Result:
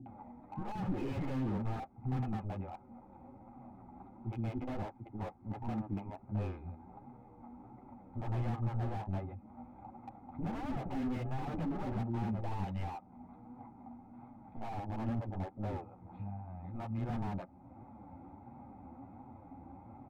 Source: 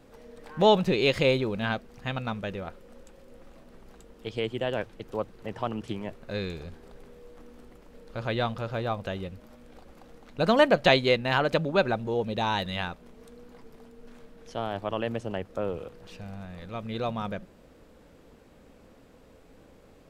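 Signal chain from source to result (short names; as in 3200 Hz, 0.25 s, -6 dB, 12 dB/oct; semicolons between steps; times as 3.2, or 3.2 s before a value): Wiener smoothing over 15 samples; upward compressor, threshold -27 dBFS; gate -31 dBFS, range -12 dB; speaker cabinet 140–2300 Hz, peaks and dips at 160 Hz -6 dB, 260 Hz +6 dB, 810 Hz +7 dB, 1200 Hz -7 dB; fixed phaser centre 1700 Hz, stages 6; soft clip -38 dBFS, distortion -1 dB; low shelf 240 Hz +8.5 dB; comb 2.4 ms, depth 38%; bands offset in time lows, highs 60 ms, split 370 Hz; flange 1.4 Hz, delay 7.8 ms, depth 4.4 ms, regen -11%; slew limiter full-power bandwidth 2.8 Hz; gain +8 dB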